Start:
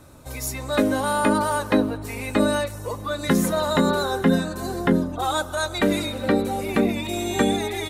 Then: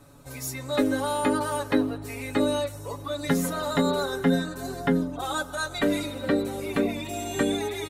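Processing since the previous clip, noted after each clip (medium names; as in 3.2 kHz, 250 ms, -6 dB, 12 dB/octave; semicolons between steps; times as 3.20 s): comb 7.1 ms, depth 77%; trim -6 dB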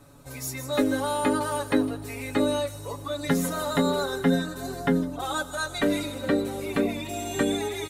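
feedback echo behind a high-pass 158 ms, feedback 52%, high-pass 5.1 kHz, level -8 dB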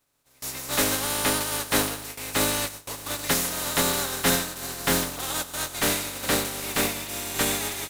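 spectral contrast reduction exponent 0.33; gate with hold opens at -25 dBFS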